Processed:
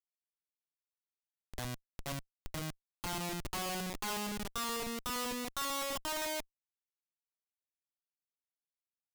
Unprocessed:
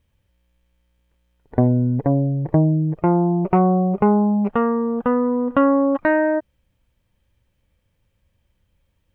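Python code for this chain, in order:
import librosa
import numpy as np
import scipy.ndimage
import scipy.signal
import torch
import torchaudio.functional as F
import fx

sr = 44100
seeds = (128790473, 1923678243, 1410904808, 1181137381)

y = fx.filter_sweep_bandpass(x, sr, from_hz=1400.0, to_hz=440.0, start_s=5.72, end_s=7.52, q=2.5)
y = fx.schmitt(y, sr, flips_db=-36.0)
y = fx.high_shelf(y, sr, hz=2100.0, db=9.5)
y = y * librosa.db_to_amplitude(-5.0)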